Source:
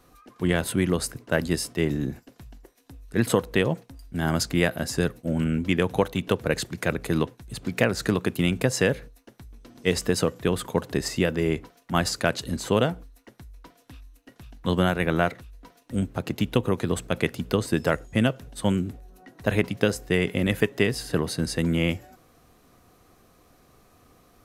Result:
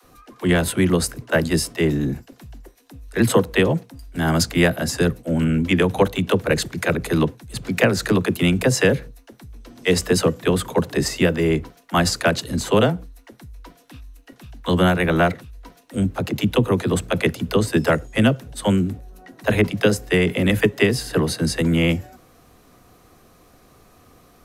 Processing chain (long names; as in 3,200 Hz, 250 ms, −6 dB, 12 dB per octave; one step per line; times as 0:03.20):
all-pass dispersion lows, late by 42 ms, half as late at 300 Hz
level +5.5 dB